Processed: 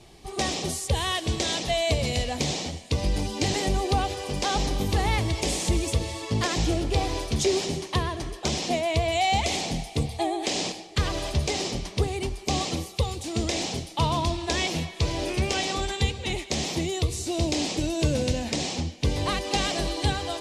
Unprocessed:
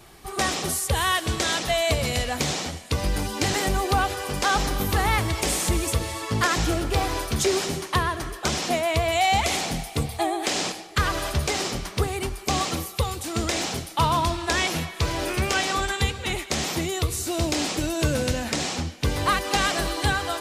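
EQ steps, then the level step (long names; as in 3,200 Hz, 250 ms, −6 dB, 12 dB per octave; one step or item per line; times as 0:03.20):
low-pass filter 7,100 Hz 12 dB per octave
parametric band 1,400 Hz −13 dB 0.84 octaves
0.0 dB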